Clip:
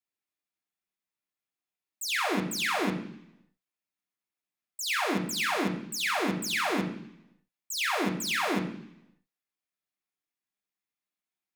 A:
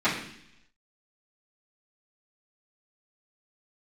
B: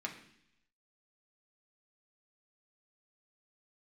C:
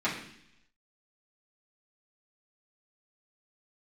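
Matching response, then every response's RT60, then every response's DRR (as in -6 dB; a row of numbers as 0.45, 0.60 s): B; 0.70, 0.70, 0.70 s; -15.0, 0.5, -9.5 dB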